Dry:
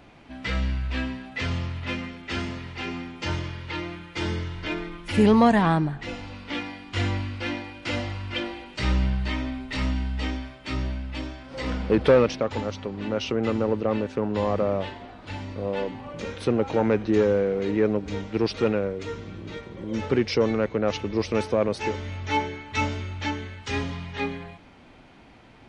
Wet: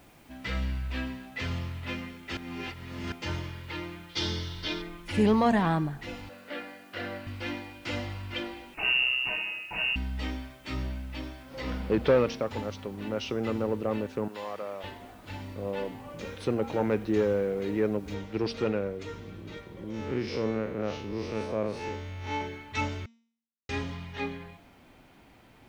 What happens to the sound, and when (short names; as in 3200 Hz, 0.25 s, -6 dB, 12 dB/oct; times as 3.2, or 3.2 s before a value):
2.37–3.12 reverse
4.09–4.82 band shelf 4400 Hz +12.5 dB 1.1 oct
6.29–7.27 speaker cabinet 240–4300 Hz, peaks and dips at 310 Hz -6 dB, 580 Hz +9 dB, 940 Hz -8 dB, 1600 Hz +5 dB, 2300 Hz -5 dB, 3400 Hz -7 dB
8.74–9.96 inverted band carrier 2800 Hz
11.12–12.46 LPF 6900 Hz 24 dB/oct
14.28–14.84 HPF 1200 Hz 6 dB/oct
18.14 noise floor step -60 dB -69 dB
19.9–22.41 time blur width 0.112 s
23.06–23.69 mute
whole clip: de-hum 230 Hz, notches 35; gain -5 dB